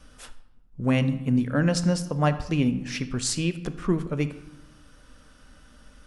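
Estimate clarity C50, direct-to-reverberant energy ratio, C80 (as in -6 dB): 13.0 dB, 11.0 dB, 15.5 dB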